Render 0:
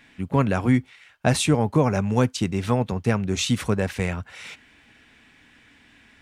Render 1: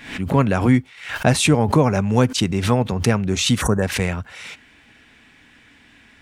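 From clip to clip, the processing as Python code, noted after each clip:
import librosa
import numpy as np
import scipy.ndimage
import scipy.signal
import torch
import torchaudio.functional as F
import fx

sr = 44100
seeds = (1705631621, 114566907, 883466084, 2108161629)

y = fx.spec_box(x, sr, start_s=3.62, length_s=0.2, low_hz=1900.0, high_hz=5700.0, gain_db=-21)
y = fx.pre_swell(y, sr, db_per_s=100.0)
y = y * 10.0 ** (3.5 / 20.0)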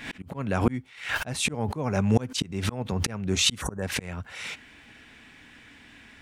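y = fx.auto_swell(x, sr, attack_ms=444.0)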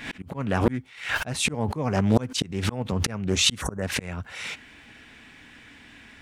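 y = fx.doppler_dist(x, sr, depth_ms=0.56)
y = y * 10.0 ** (2.0 / 20.0)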